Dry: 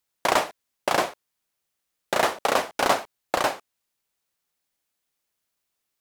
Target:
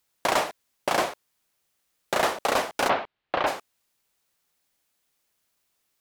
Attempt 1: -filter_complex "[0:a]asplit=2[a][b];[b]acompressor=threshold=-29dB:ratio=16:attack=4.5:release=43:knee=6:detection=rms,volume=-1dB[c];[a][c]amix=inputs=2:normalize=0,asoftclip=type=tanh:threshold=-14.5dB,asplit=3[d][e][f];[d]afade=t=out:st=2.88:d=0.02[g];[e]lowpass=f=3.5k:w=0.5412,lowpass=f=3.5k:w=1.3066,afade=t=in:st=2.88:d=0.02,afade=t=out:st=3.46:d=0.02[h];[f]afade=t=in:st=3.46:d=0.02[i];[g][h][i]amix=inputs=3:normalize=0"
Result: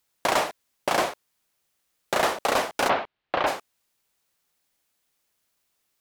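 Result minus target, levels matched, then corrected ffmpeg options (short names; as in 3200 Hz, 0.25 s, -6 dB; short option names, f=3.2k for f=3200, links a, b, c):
compressor: peak gain reduction -8 dB
-filter_complex "[0:a]asplit=2[a][b];[b]acompressor=threshold=-37.5dB:ratio=16:attack=4.5:release=43:knee=6:detection=rms,volume=-1dB[c];[a][c]amix=inputs=2:normalize=0,asoftclip=type=tanh:threshold=-14.5dB,asplit=3[d][e][f];[d]afade=t=out:st=2.88:d=0.02[g];[e]lowpass=f=3.5k:w=0.5412,lowpass=f=3.5k:w=1.3066,afade=t=in:st=2.88:d=0.02,afade=t=out:st=3.46:d=0.02[h];[f]afade=t=in:st=3.46:d=0.02[i];[g][h][i]amix=inputs=3:normalize=0"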